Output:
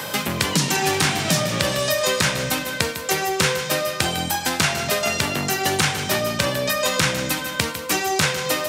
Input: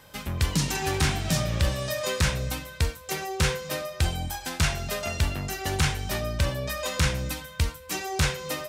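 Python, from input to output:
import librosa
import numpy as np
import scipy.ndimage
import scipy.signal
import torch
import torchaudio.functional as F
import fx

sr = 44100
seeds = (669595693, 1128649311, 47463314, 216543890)

p1 = scipy.signal.sosfilt(scipy.signal.bessel(4, 190.0, 'highpass', norm='mag', fs=sr, output='sos'), x)
p2 = p1 + fx.echo_feedback(p1, sr, ms=152, feedback_pct=51, wet_db=-13, dry=0)
p3 = fx.band_squash(p2, sr, depth_pct=70)
y = p3 * 10.0 ** (8.5 / 20.0)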